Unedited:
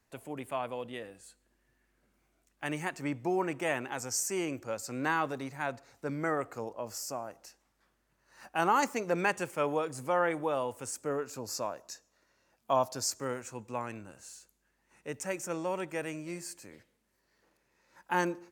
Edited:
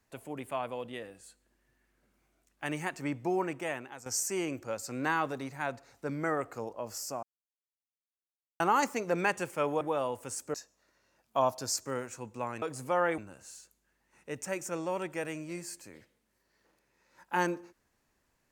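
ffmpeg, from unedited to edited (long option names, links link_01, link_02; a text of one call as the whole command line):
ffmpeg -i in.wav -filter_complex "[0:a]asplit=8[link_01][link_02][link_03][link_04][link_05][link_06][link_07][link_08];[link_01]atrim=end=4.06,asetpts=PTS-STARTPTS,afade=type=out:start_time=3.36:duration=0.7:silence=0.223872[link_09];[link_02]atrim=start=4.06:end=7.23,asetpts=PTS-STARTPTS,afade=type=in:duration=0.004:curve=hsin:silence=0.223872,afade=type=out:start_time=3.166:duration=0.004:curve=hsin[link_10];[link_03]atrim=start=7.23:end=8.6,asetpts=PTS-STARTPTS,volume=0[link_11];[link_04]atrim=start=8.6:end=9.812,asetpts=PTS-STARTPTS,afade=type=in:duration=0.004:curve=hsin[link_12];[link_05]atrim=start=10.368:end=11.102[link_13];[link_06]atrim=start=11.878:end=13.962[link_14];[link_07]atrim=start=9.808:end=10.372[link_15];[link_08]atrim=start=13.958[link_16];[link_09][link_10][link_11][link_12]concat=n=4:v=0:a=1[link_17];[link_17][link_13]acrossfade=duration=0.004:curve1=hsin:curve2=hsin[link_18];[link_18][link_14]acrossfade=duration=0.004:curve1=hsin:curve2=hsin[link_19];[link_19][link_15]acrossfade=duration=0.004:curve1=hsin:curve2=hsin[link_20];[link_20][link_16]acrossfade=duration=0.004:curve1=hsin:curve2=hsin" out.wav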